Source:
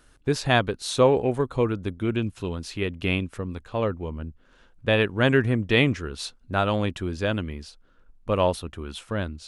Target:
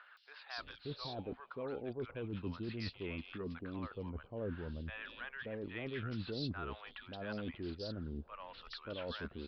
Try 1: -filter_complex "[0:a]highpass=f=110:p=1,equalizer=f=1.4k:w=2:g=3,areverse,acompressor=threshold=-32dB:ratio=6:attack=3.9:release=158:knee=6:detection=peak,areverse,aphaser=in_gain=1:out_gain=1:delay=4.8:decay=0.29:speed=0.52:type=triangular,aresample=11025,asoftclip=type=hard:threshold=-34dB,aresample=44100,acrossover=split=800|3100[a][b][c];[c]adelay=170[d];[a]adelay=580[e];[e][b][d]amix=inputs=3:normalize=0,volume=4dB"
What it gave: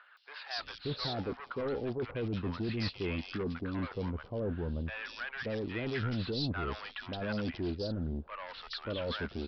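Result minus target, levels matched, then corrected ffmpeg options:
compressor: peak gain reduction -9.5 dB
-filter_complex "[0:a]highpass=f=110:p=1,equalizer=f=1.4k:w=2:g=3,areverse,acompressor=threshold=-43.5dB:ratio=6:attack=3.9:release=158:knee=6:detection=peak,areverse,aphaser=in_gain=1:out_gain=1:delay=4.8:decay=0.29:speed=0.52:type=triangular,aresample=11025,asoftclip=type=hard:threshold=-34dB,aresample=44100,acrossover=split=800|3100[a][b][c];[c]adelay=170[d];[a]adelay=580[e];[e][b][d]amix=inputs=3:normalize=0,volume=4dB"

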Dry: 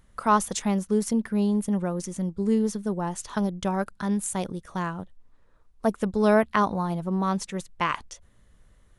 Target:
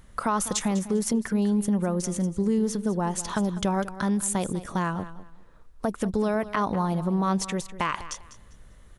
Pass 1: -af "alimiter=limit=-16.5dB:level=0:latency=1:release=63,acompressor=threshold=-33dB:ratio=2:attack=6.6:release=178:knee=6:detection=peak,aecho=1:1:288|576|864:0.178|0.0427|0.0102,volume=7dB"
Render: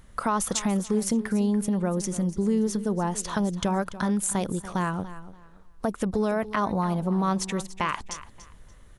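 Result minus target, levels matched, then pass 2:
echo 89 ms late
-af "alimiter=limit=-16.5dB:level=0:latency=1:release=63,acompressor=threshold=-33dB:ratio=2:attack=6.6:release=178:knee=6:detection=peak,aecho=1:1:199|398|597:0.178|0.0427|0.0102,volume=7dB"

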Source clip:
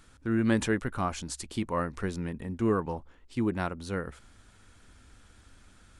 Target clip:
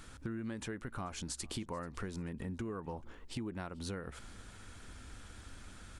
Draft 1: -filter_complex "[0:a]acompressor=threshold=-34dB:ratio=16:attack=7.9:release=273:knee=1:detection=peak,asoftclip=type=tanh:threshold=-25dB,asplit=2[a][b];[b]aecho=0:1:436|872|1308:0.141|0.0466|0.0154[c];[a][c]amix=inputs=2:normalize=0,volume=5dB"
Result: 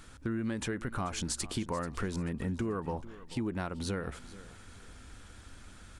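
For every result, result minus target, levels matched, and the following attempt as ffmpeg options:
compressor: peak gain reduction -7 dB; echo-to-direct +7 dB
-filter_complex "[0:a]acompressor=threshold=-41.5dB:ratio=16:attack=7.9:release=273:knee=1:detection=peak,asoftclip=type=tanh:threshold=-25dB,asplit=2[a][b];[b]aecho=0:1:436|872|1308:0.141|0.0466|0.0154[c];[a][c]amix=inputs=2:normalize=0,volume=5dB"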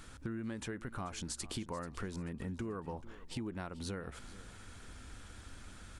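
echo-to-direct +7 dB
-filter_complex "[0:a]acompressor=threshold=-41.5dB:ratio=16:attack=7.9:release=273:knee=1:detection=peak,asoftclip=type=tanh:threshold=-25dB,asplit=2[a][b];[b]aecho=0:1:436|872:0.0631|0.0208[c];[a][c]amix=inputs=2:normalize=0,volume=5dB"

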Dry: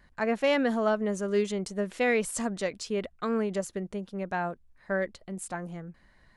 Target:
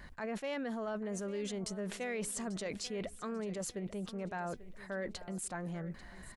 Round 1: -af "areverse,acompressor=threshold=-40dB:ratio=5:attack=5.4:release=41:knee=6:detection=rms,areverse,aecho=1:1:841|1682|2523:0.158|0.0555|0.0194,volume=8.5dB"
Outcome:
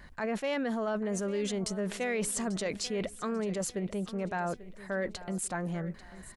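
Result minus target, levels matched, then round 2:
compressor: peak gain reduction -6.5 dB
-af "areverse,acompressor=threshold=-48dB:ratio=5:attack=5.4:release=41:knee=6:detection=rms,areverse,aecho=1:1:841|1682|2523:0.158|0.0555|0.0194,volume=8.5dB"

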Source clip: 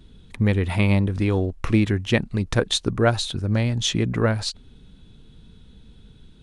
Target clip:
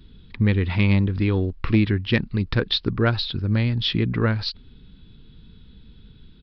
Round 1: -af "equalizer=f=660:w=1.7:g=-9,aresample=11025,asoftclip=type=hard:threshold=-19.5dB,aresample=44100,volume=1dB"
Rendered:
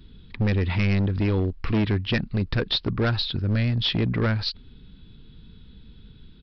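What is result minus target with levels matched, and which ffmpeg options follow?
hard clip: distortion +19 dB
-af "equalizer=f=660:w=1.7:g=-9,aresample=11025,asoftclip=type=hard:threshold=-10.5dB,aresample=44100,volume=1dB"

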